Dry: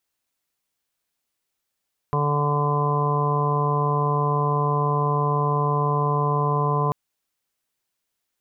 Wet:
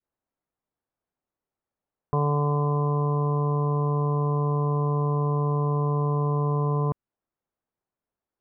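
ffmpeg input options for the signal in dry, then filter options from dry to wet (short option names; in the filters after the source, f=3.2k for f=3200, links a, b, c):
-f lavfi -i "aevalsrc='0.0794*sin(2*PI*146*t)+0.0141*sin(2*PI*292*t)+0.0447*sin(2*PI*438*t)+0.02*sin(2*PI*584*t)+0.0282*sin(2*PI*730*t)+0.0126*sin(2*PI*876*t)+0.0668*sin(2*PI*1022*t)+0.0168*sin(2*PI*1168*t)':d=4.79:s=44100"
-af "lowpass=1k,adynamicequalizer=threshold=0.0126:dfrequency=770:dqfactor=1.1:tfrequency=770:tqfactor=1.1:attack=5:release=100:ratio=0.375:range=3.5:mode=cutabove:tftype=bell"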